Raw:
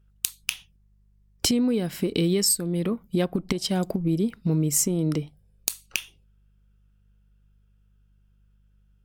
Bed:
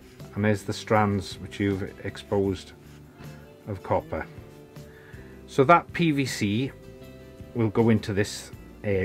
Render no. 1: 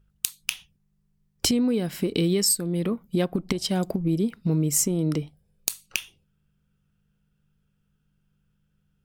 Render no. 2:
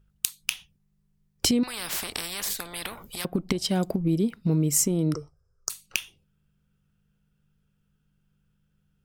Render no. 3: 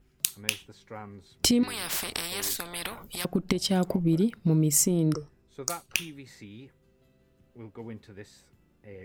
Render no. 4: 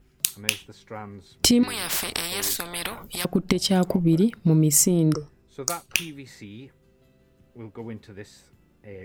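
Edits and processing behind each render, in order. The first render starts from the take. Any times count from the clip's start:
hum removal 50 Hz, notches 2
0:01.63–0:03.25: every bin compressed towards the loudest bin 10 to 1; 0:05.14–0:05.70: drawn EQ curve 120 Hz 0 dB, 210 Hz −30 dB, 400 Hz −2 dB, 800 Hz −8 dB, 1,300 Hz +12 dB, 2,400 Hz −26 dB, 3,700 Hz −29 dB, 5,300 Hz +5 dB, 11,000 Hz −16 dB
mix in bed −20.5 dB
level +4.5 dB; brickwall limiter −2 dBFS, peak gain reduction 1 dB

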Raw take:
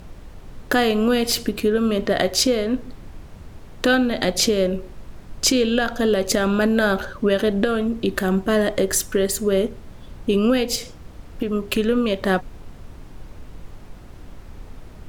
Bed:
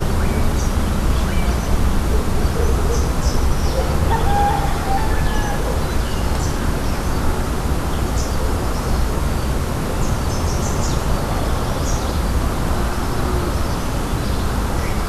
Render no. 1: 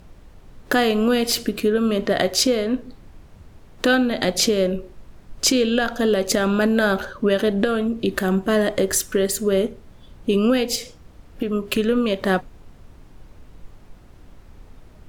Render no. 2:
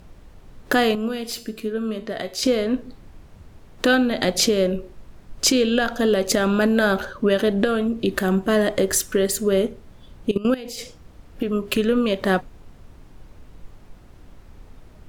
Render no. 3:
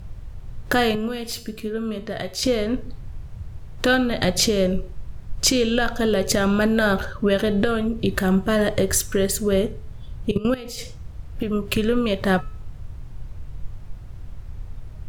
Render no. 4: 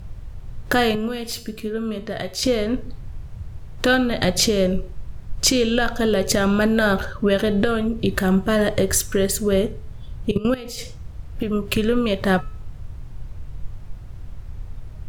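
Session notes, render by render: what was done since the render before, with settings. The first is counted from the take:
noise reduction from a noise print 6 dB
0:00.95–0:02.43: tuned comb filter 220 Hz, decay 0.47 s, mix 70%; 0:08.26–0:09.09: floating-point word with a short mantissa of 8 bits; 0:10.31–0:10.79: output level in coarse steps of 17 dB
low shelf with overshoot 170 Hz +10 dB, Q 1.5; hum removal 431.4 Hz, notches 21
level +1 dB

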